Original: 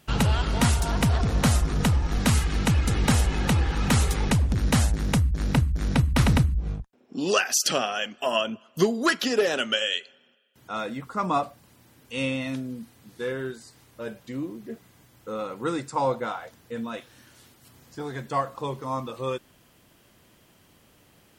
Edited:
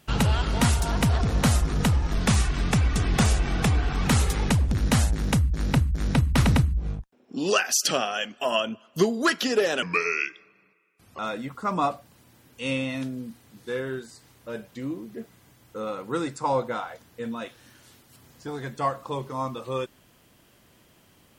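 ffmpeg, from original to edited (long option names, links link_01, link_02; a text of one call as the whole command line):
ffmpeg -i in.wav -filter_complex "[0:a]asplit=5[link_01][link_02][link_03][link_04][link_05];[link_01]atrim=end=2.134[link_06];[link_02]atrim=start=2.13:end=3.86,asetpts=PTS-STARTPTS,asetrate=39690,aresample=44100[link_07];[link_03]atrim=start=3.856:end=9.634[link_08];[link_04]atrim=start=9.63:end=10.71,asetpts=PTS-STARTPTS,asetrate=34839,aresample=44100[link_09];[link_05]atrim=start=10.706[link_10];[link_06][link_07]acrossfade=duration=0.004:curve1=hsin:curve2=hsin[link_11];[link_11][link_08]acrossfade=duration=0.004:curve1=hsin:curve2=hsin[link_12];[link_12][link_09]acrossfade=duration=0.004:curve1=hsin:curve2=hsin[link_13];[link_13][link_10]acrossfade=duration=0.004:curve1=hsin:curve2=hsin" out.wav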